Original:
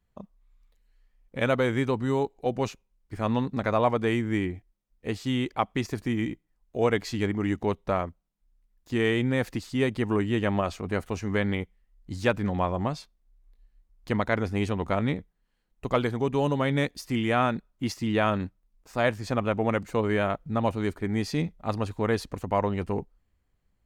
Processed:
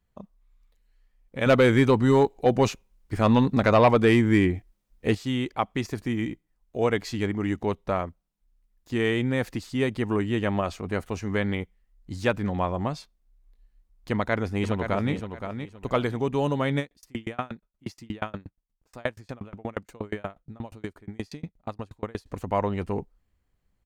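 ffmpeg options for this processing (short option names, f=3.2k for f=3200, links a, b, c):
-filter_complex "[0:a]asettb=1/sr,asplit=3[a][b][c];[a]atrim=end=1.464[d];[b]atrim=start=1.46:end=5.15,asetpts=PTS-STARTPTS,afade=t=in:d=0.004:c=qsin,afade=t=out:st=3.686:d=0.004:c=qsin,aeval=exprs='0.299*sin(PI/2*1.58*val(0)/0.299)':c=same[e];[c]atrim=start=5.146[f];[d][e]acrossfade=d=0.004:c1=hsin:c2=qsin[g];[g][f]acrossfade=d=0.004:c1=qsin:c2=hsin,asplit=2[h][i];[i]afade=t=in:st=14.11:d=0.01,afade=t=out:st=15.13:d=0.01,aecho=0:1:520|1040|1560:0.398107|0.0995268|0.0248817[j];[h][j]amix=inputs=2:normalize=0,asettb=1/sr,asplit=3[k][l][m];[k]atrim=end=16.794[n];[l]atrim=start=16.79:end=22.26,asetpts=PTS-STARTPTS,afade=t=in:d=0.004:c=qsin,afade=t=out:st=5.466:d=0.004:c=qsin,aeval=exprs='val(0)*pow(10,-34*if(lt(mod(8.4*n/s,1),2*abs(8.4)/1000),1-mod(8.4*n/s,1)/(2*abs(8.4)/1000),(mod(8.4*n/s,1)-2*abs(8.4)/1000)/(1-2*abs(8.4)/1000))/20)':c=same[o];[m]atrim=start=22.256[p];[n][o]acrossfade=d=0.004:c1=hsin:c2=qsin[q];[q][p]acrossfade=d=0.004:c1=qsin:c2=hsin"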